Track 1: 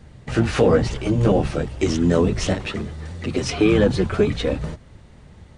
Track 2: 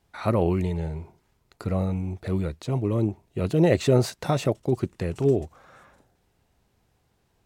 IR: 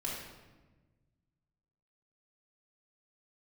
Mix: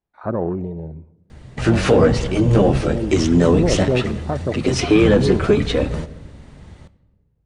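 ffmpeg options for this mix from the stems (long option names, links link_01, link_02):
-filter_complex "[0:a]adelay=1300,volume=-4dB,asplit=2[link_01][link_02];[link_02]volume=-16dB[link_03];[1:a]afwtdn=0.0355,lowpass=frequency=1800:poles=1,equalizer=frequency=91:width_type=o:width=0.77:gain=-7,volume=-6dB,asplit=2[link_04][link_05];[link_05]volume=-23dB[link_06];[2:a]atrim=start_sample=2205[link_07];[link_03][link_06]amix=inputs=2:normalize=0[link_08];[link_08][link_07]afir=irnorm=-1:irlink=0[link_09];[link_01][link_04][link_09]amix=inputs=3:normalize=0,acontrast=80"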